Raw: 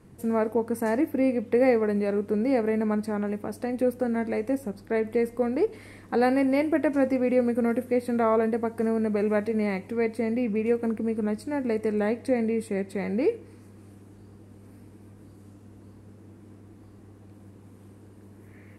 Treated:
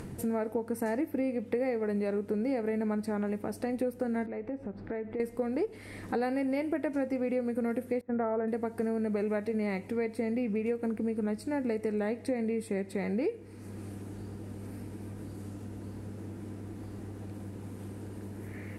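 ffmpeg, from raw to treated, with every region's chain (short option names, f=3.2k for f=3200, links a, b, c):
-filter_complex "[0:a]asettb=1/sr,asplit=3[a][b][c];[a]atrim=end=4.264[d];[b]atrim=start=4.26:end=5.2,asetpts=PTS-STARTPTS,afade=t=in:d=0.004:c=qsin,afade=t=out:st=0.936:d=0.004:c=qsin,lowpass=2.1k,acompressor=threshold=-40dB:ratio=2:attack=3.2:release=140:knee=1:detection=peak[e];[c]atrim=start=5.196[f];[d][e]acrossfade=d=0.004:c1=hsin:c2=qsin[g];[g][f]acrossfade=d=0.004:c1=qsin:c2=hsin,asettb=1/sr,asplit=3[h][i][j];[h]atrim=end=8.014[k];[i]atrim=start=8.01:end=8.48,asetpts=PTS-STARTPTS,afade=t=in:d=0.004:c=qsin,afade=t=out:st=0.466:d=0.004:c=qsin,lowpass=f=1.8k:w=0.5412,lowpass=f=1.8k:w=1.3066,agate=range=-16dB:threshold=-28dB:ratio=16:release=100:detection=peak[l];[j]atrim=start=8.476[m];[k][l]acrossfade=d=0.004:c1=hsin:c2=qsin[n];[n][m]acrossfade=d=0.004:c1=qsin:c2=hsin,acompressor=mode=upward:threshold=-30dB:ratio=2.5,bandreject=f=1.1k:w=11,acompressor=threshold=-26dB:ratio=6,volume=-1.5dB"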